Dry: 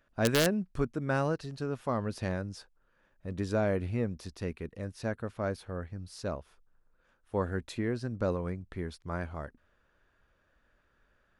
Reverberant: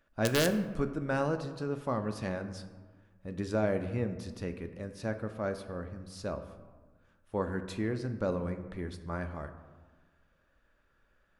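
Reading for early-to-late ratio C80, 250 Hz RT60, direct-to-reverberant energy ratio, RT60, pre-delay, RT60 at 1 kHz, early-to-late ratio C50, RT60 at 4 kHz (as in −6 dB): 12.0 dB, 1.8 s, 7.5 dB, 1.4 s, 3 ms, 1.4 s, 10.5 dB, 0.75 s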